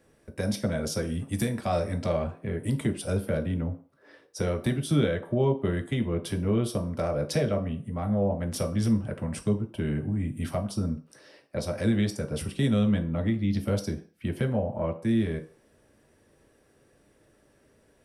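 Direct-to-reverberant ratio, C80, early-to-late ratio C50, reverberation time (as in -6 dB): 1.5 dB, 17.0 dB, 13.0 dB, 0.45 s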